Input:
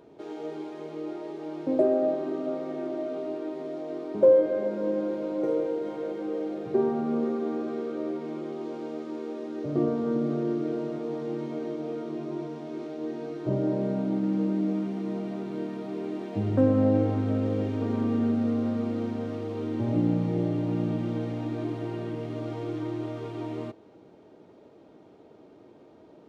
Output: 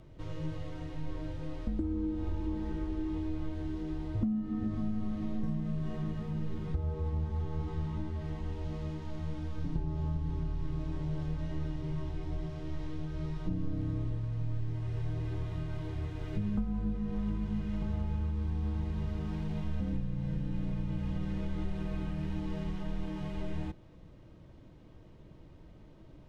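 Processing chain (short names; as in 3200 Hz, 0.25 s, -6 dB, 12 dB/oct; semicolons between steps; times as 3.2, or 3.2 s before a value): compressor 10:1, threshold -29 dBFS, peak gain reduction 15.5 dB; frequency shift -310 Hz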